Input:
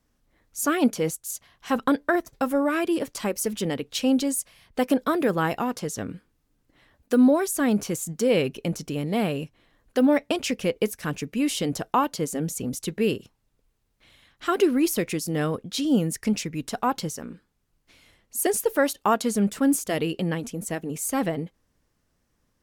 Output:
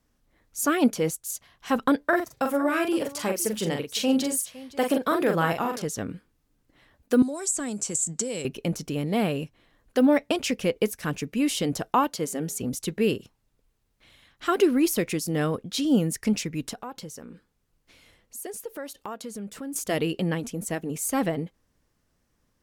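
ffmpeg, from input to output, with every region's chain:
-filter_complex "[0:a]asettb=1/sr,asplit=3[s0][s1][s2];[s0]atrim=end=2.044[s3];[s1]atrim=start=2.04:end=5.82,asetpts=PTS-STARTPTS,afade=t=in:d=0.004:c=qsin,afade=t=out:st=3.776:d=0.004:c=qsin,highpass=64,equalizer=f=260:t=o:w=0.92:g=-4,aecho=1:1:42|510:0.562|0.126,atrim=end_sample=166698[s4];[s2]atrim=start=5.816[s5];[s3][s4]acrossfade=d=0.004:c1=hsin:c2=qsin[s6];[s6][s5]acrossfade=d=0.004:c1=qsin:c2=hsin,asettb=1/sr,asplit=3[s7][s8][s9];[s7]atrim=end=7.224[s10];[s8]atrim=start=7.22:end=8.45,asetpts=PTS-STARTPTS,afade=t=in:d=0.004:c=qsin,afade=t=out:st=1.226:d=0.004:c=qsin,lowpass=f=7800:t=q:w=8.1,acrossover=split=130|4900[s11][s12][s13];[s11]acompressor=threshold=0.00316:ratio=4[s14];[s12]acompressor=threshold=0.0251:ratio=4[s15];[s13]acompressor=threshold=0.0501:ratio=4[s16];[s14][s15][s16]amix=inputs=3:normalize=0[s17];[s9]atrim=start=8.446[s18];[s10][s17]acrossfade=d=0.004:c1=hsin:c2=qsin[s19];[s19][s18]acrossfade=d=0.004:c1=qsin:c2=hsin,asettb=1/sr,asplit=3[s20][s21][s22];[s20]atrim=end=12.104[s23];[s21]atrim=start=12.1:end=12.61,asetpts=PTS-STARTPTS,afade=t=in:d=0.004:c=qsin,afade=t=out:st=0.506:d=0.004:c=qsin,highpass=44,lowshelf=f=180:g=-7.5,bandreject=f=204.4:t=h:w=4,bandreject=f=408.8:t=h:w=4,bandreject=f=613.2:t=h:w=4,bandreject=f=817.6:t=h:w=4,bandreject=f=1022:t=h:w=4,bandreject=f=1226.4:t=h:w=4,bandreject=f=1430.8:t=h:w=4,bandreject=f=1635.2:t=h:w=4,bandreject=f=1839.6:t=h:w=4,bandreject=f=2044:t=h:w=4,bandreject=f=2248.4:t=h:w=4,bandreject=f=2452.8:t=h:w=4,bandreject=f=2657.2:t=h:w=4,bandreject=f=2861.6:t=h:w=4,bandreject=f=3066:t=h:w=4,bandreject=f=3270.4:t=h:w=4,bandreject=f=3474.8:t=h:w=4[s24];[s22]atrim=start=12.606[s25];[s23][s24]acrossfade=d=0.004:c1=hsin:c2=qsin[s26];[s26][s25]acrossfade=d=0.004:c1=qsin:c2=hsin,asettb=1/sr,asplit=3[s27][s28][s29];[s27]atrim=end=16.734[s30];[s28]atrim=start=16.73:end=19.76,asetpts=PTS-STARTPTS,afade=t=in:d=0.004:c=qsin,afade=t=out:st=3.026:d=0.004:c=qsin,equalizer=f=490:t=o:w=0.22:g=4.5,acompressor=threshold=0.01:ratio=2.5:attack=3.2:release=140:knee=1:detection=peak[s31];[s29]atrim=start=19.756[s32];[s30][s31]acrossfade=d=0.004:c1=hsin:c2=qsin[s33];[s33][s32]acrossfade=d=0.004:c1=qsin:c2=hsin"

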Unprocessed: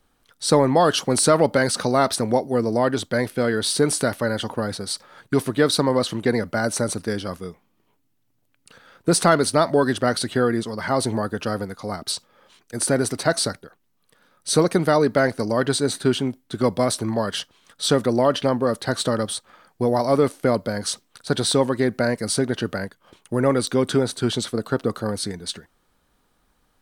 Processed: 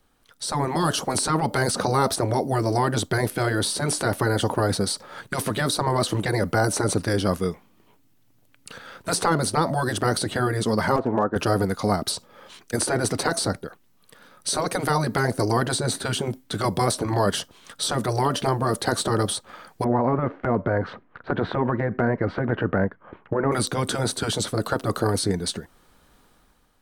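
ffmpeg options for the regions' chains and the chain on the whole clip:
-filter_complex "[0:a]asettb=1/sr,asplit=3[s0][s1][s2];[s0]atrim=end=10.964[s3];[s1]atrim=start=10.96:end=11.36,asetpts=PTS-STARTPTS,afade=t=in:d=0.004:c=qsin,afade=t=out:st=0.396:d=0.004:c=qsin,lowpass=f=1400:w=0.5412,lowpass=f=1400:w=1.3066,aemphasis=mode=production:type=riaa,aeval=exprs='clip(val(0),-1,0.1)':c=same[s4];[s2]atrim=start=11.356[s5];[s3][s4]acrossfade=d=0.004:c1=hsin:c2=qsin[s6];[s6][s5]acrossfade=d=0.004:c1=qsin:c2=hsin,asettb=1/sr,asplit=3[s7][s8][s9];[s7]atrim=end=19.844[s10];[s8]atrim=start=19.84:end=23.52,asetpts=PTS-STARTPTS,afade=t=in:d=0.004:c=qsin,afade=t=out:st=3.676:d=0.004:c=qsin,lowpass=f=1900:w=0.5412,lowpass=f=1900:w=1.3066,acompressor=threshold=0.0891:ratio=3:attack=3.2:release=140:knee=1:detection=peak[s11];[s9]atrim=start=23.516[s12];[s10][s11]acrossfade=d=0.004:c1=hsin:c2=qsin[s13];[s13][s12]acrossfade=d=0.004:c1=qsin:c2=hsin,acrossover=split=1000|6400[s14][s15][s16];[s14]acompressor=threshold=0.1:ratio=4[s17];[s15]acompressor=threshold=0.01:ratio=4[s18];[s16]acompressor=threshold=0.0112:ratio=4[s19];[s17][s18][s19]amix=inputs=3:normalize=0,afftfilt=real='re*lt(hypot(re,im),0.316)':imag='im*lt(hypot(re,im),0.316)':win_size=1024:overlap=0.75,dynaudnorm=f=150:g=7:m=2.66"

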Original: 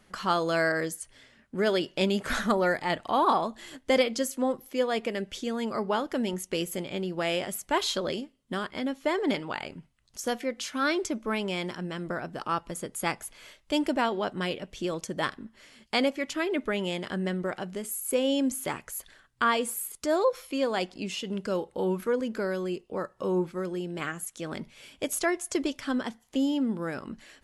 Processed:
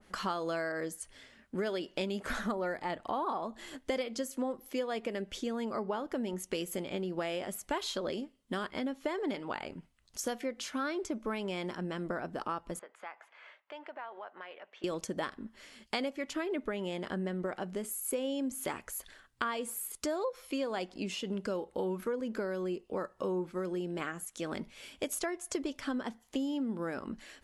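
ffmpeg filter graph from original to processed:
-filter_complex "[0:a]asettb=1/sr,asplit=3[s0][s1][s2];[s0]atrim=end=12.794[s3];[s1]atrim=start=12.79:end=14.84,asetpts=PTS-STARTPTS,afade=t=in:d=0.004:c=qsin,afade=t=out:st=2.046:d=0.004:c=qsin,asuperpass=centerf=1200:order=4:qfactor=0.77,acompressor=threshold=0.00501:ratio=2.5:attack=3.2:release=140:knee=1:detection=peak[s4];[s2]atrim=start=14.836[s5];[s3][s4]acrossfade=d=0.004:c1=hsin:c2=qsin[s6];[s6][s5]acrossfade=d=0.004:c1=qsin:c2=hsin,equalizer=f=140:w=3.8:g=-9,acompressor=threshold=0.0282:ratio=6,adynamicequalizer=threshold=0.00355:dfrequency=1700:dqfactor=0.7:tfrequency=1700:tqfactor=0.7:attack=5:release=100:ratio=0.375:range=3.5:mode=cutabove:tftype=highshelf"

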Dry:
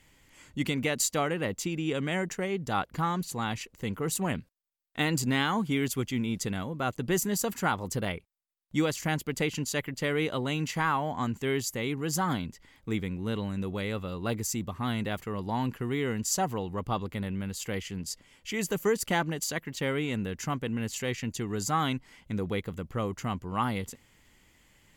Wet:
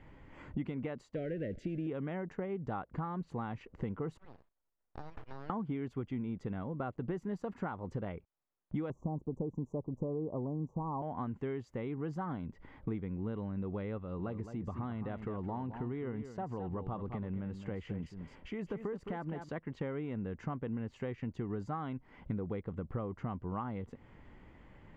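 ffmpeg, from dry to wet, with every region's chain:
-filter_complex "[0:a]asettb=1/sr,asplit=3[s0][s1][s2];[s0]atrim=end=1.154[s3];[s1]atrim=start=1.15:end=1.87,asetpts=PTS-STARTPTS,afade=t=in:d=0.004:c=qsin,afade=t=out:st=0.716:d=0.004:c=qsin,aeval=exprs='val(0)+0.5*0.015*sgn(val(0))':c=same,asuperstop=centerf=1000:order=8:qfactor=1[s4];[s2]atrim=start=1.866[s5];[s3][s4]acrossfade=d=0.004:c1=hsin:c2=qsin[s6];[s6][s5]acrossfade=d=0.004:c1=qsin:c2=hsin,asettb=1/sr,asplit=3[s7][s8][s9];[s7]atrim=end=4.174[s10];[s8]atrim=start=4.17:end=5.5,asetpts=PTS-STARTPTS,afade=t=in:d=0.004:c=qsin,afade=t=out:st=1.326:d=0.004:c=qsin,highpass=1400,aeval=exprs='abs(val(0))':c=same,acompressor=threshold=0.00447:ratio=6:attack=3.2:release=140:knee=1:detection=peak[s11];[s9]atrim=start=5.496[s12];[s10][s11]acrossfade=d=0.004:c1=hsin:c2=qsin[s13];[s13][s12]acrossfade=d=0.004:c1=qsin:c2=hsin,asettb=1/sr,asplit=3[s14][s15][s16];[s14]atrim=end=8.904[s17];[s15]atrim=start=8.9:end=11.02,asetpts=PTS-STARTPTS,afade=t=in:d=0.004:c=qsin,afade=t=out:st=2.116:d=0.004:c=qsin,asuperstop=centerf=2600:order=20:qfactor=0.55,tiltshelf=f=1100:g=5[s18];[s16]atrim=start=11.016[s19];[s17][s18]acrossfade=d=0.004:c1=hsin:c2=qsin[s20];[s20][s19]acrossfade=d=0.004:c1=qsin:c2=hsin,asettb=1/sr,asplit=3[s21][s22][s23];[s21]atrim=end=13.984[s24];[s22]atrim=start=13.98:end=19.49,asetpts=PTS-STARTPTS,afade=t=in:d=0.004:c=qsin,afade=t=out:st=5.506:d=0.004:c=qsin,acompressor=threshold=0.01:ratio=2:attack=3.2:release=140:knee=1:detection=peak,aecho=1:1:214:0.316,atrim=end_sample=242991[s25];[s23]atrim=start=19.486[s26];[s24][s25]acrossfade=d=0.004:c1=hsin:c2=qsin[s27];[s27][s26]acrossfade=d=0.004:c1=qsin:c2=hsin,acompressor=threshold=0.00708:ratio=8,lowpass=1200,volume=2.66"

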